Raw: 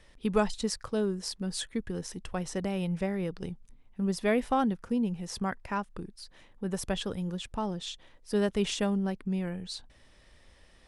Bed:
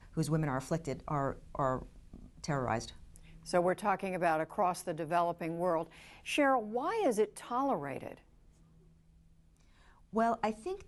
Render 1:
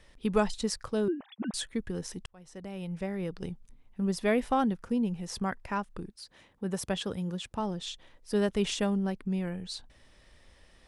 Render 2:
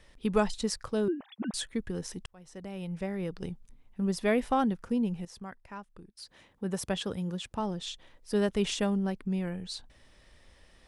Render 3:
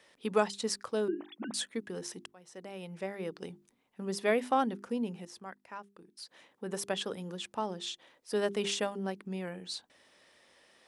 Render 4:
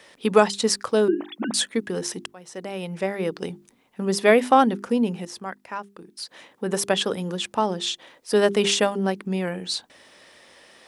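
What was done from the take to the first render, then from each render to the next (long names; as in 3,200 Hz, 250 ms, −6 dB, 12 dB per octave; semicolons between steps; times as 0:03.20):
0:01.08–0:01.54: three sine waves on the formant tracks; 0:02.26–0:03.45: fade in linear; 0:06.10–0:07.60: high-pass filter 59 Hz
0:05.25–0:06.17: clip gain −11 dB
high-pass filter 280 Hz 12 dB per octave; mains-hum notches 50/100/150/200/250/300/350/400 Hz
level +12 dB; brickwall limiter −3 dBFS, peak gain reduction 1.5 dB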